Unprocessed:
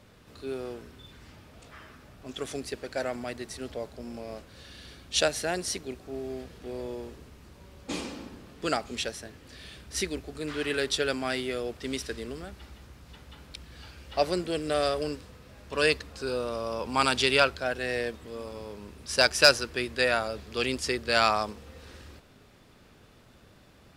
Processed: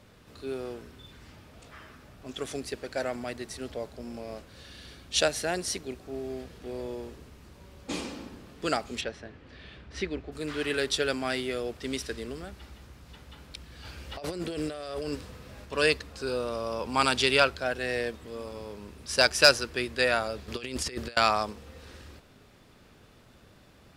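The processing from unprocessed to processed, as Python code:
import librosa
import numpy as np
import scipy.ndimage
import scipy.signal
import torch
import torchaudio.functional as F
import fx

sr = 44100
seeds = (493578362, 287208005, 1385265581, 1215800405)

y = fx.lowpass(x, sr, hz=2900.0, slope=12, at=(9.0, 10.31), fade=0.02)
y = fx.over_compress(y, sr, threshold_db=-34.0, ratio=-1.0, at=(13.84, 15.64), fade=0.02)
y = fx.over_compress(y, sr, threshold_db=-34.0, ratio=-0.5, at=(20.48, 21.17))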